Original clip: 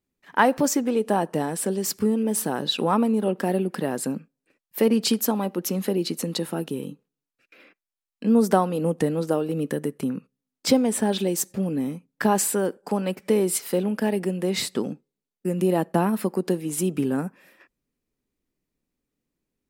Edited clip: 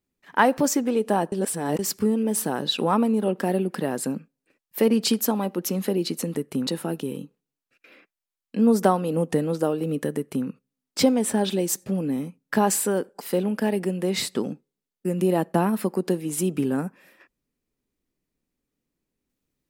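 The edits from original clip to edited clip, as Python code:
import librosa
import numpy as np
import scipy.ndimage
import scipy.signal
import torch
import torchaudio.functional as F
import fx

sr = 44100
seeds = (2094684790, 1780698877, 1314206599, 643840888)

y = fx.edit(x, sr, fx.reverse_span(start_s=1.32, length_s=0.47),
    fx.duplicate(start_s=9.83, length_s=0.32, to_s=6.35),
    fx.cut(start_s=12.89, length_s=0.72), tone=tone)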